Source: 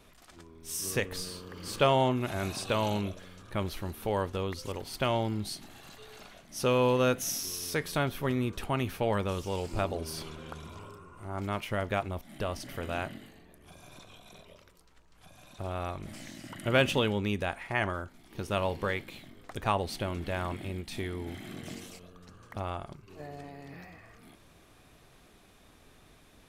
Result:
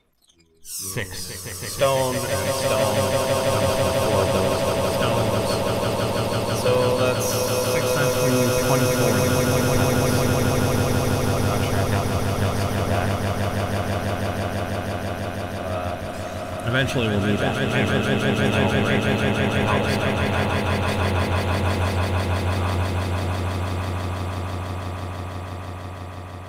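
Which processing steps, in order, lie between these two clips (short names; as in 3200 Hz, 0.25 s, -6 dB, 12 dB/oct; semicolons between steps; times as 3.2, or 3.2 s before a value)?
phaser 0.23 Hz, delay 2.1 ms, feedback 52%; in parallel at -5 dB: soft clip -25 dBFS, distortion -9 dB; on the sum: spectral noise reduction 17 dB; swelling echo 0.164 s, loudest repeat 8, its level -6 dB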